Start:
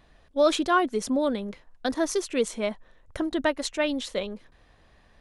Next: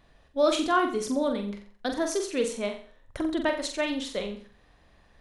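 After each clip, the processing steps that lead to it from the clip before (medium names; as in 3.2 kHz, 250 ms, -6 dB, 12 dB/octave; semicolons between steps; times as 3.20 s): flutter echo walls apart 7.6 m, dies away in 0.44 s; trim -2.5 dB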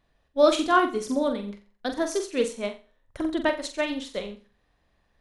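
upward expansion 1.5:1, over -47 dBFS; trim +5 dB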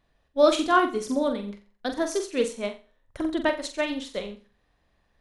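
no audible change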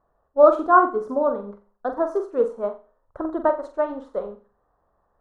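FFT filter 280 Hz 0 dB, 420 Hz +8 dB, 1.3 kHz +11 dB, 2.3 kHz -21 dB; trim -3.5 dB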